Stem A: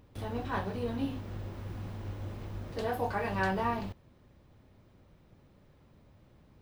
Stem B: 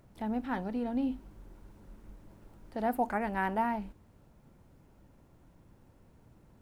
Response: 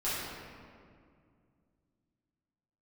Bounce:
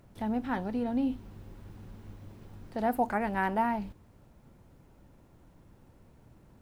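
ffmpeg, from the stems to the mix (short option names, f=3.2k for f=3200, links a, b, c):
-filter_complex "[0:a]alimiter=level_in=5dB:limit=-24dB:level=0:latency=1,volume=-5dB,acrossover=split=290|3000[a][b][c];[b]acompressor=threshold=-50dB:ratio=6[d];[a][d][c]amix=inputs=3:normalize=0,volume=-9.5dB[e];[1:a]volume=2dB[f];[e][f]amix=inputs=2:normalize=0"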